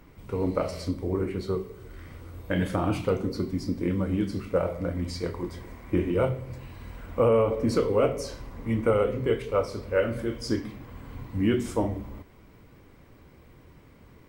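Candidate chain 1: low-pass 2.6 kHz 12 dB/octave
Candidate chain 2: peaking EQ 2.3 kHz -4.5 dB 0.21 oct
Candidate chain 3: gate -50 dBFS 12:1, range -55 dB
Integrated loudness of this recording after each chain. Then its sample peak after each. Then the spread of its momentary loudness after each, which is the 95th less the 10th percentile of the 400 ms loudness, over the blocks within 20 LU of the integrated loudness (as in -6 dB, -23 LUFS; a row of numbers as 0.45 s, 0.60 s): -28.0 LUFS, -28.0 LUFS, -28.0 LUFS; -12.5 dBFS, -12.5 dBFS, -12.5 dBFS; 18 LU, 18 LU, 18 LU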